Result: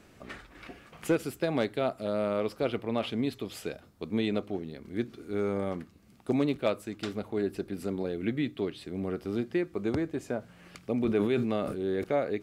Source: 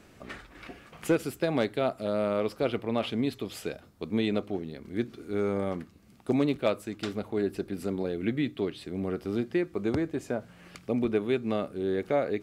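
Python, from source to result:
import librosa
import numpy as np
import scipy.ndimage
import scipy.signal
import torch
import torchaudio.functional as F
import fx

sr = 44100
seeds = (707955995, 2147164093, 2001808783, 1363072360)

y = fx.sustainer(x, sr, db_per_s=40.0, at=(10.97, 12.04))
y = y * 10.0 ** (-1.5 / 20.0)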